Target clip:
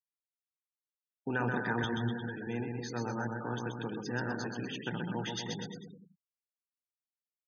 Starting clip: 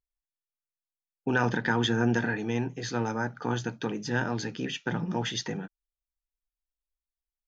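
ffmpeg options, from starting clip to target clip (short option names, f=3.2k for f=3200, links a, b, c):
-filter_complex "[0:a]asettb=1/sr,asplit=3[a][b][c];[a]atrim=end=1.844[d];[b]atrim=start=1.84:end=2.47,asetpts=PTS-STARTPTS,afade=t=in:d=0.004:c=qsin,afade=t=out:st=0.626:d=0.004:c=qsin,acrossover=split=160[e][f];[f]acompressor=threshold=-32dB:ratio=8[g];[e][g]amix=inputs=2:normalize=0[h];[c]atrim=start=2.466[i];[d][h]acrossfade=d=0.004:c1=hsin:c2=qsin[j];[j][i]acrossfade=d=0.004:c1=qsin:c2=hsin,aecho=1:1:130|247|352.3|447.1|532.4:0.631|0.398|0.251|0.158|0.1,afftfilt=real='re*gte(hypot(re,im),0.0178)':imag='im*gte(hypot(re,im),0.0178)':win_size=1024:overlap=0.75,volume=-7.5dB"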